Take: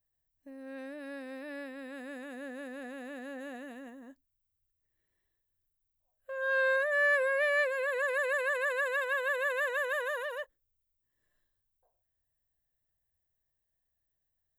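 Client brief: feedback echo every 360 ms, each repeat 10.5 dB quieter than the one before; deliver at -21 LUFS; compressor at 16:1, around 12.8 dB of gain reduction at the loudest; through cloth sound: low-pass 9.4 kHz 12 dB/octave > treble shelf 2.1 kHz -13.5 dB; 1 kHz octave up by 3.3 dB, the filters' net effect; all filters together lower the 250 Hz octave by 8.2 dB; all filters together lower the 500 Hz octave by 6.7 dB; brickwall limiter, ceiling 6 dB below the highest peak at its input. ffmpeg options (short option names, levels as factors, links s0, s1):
-af "equalizer=f=250:t=o:g=-7,equalizer=f=500:t=o:g=-7.5,equalizer=f=1000:t=o:g=8.5,acompressor=threshold=0.0158:ratio=16,alimiter=level_in=3.98:limit=0.0631:level=0:latency=1,volume=0.251,lowpass=9400,highshelf=f=2100:g=-13.5,aecho=1:1:360|720|1080:0.299|0.0896|0.0269,volume=20"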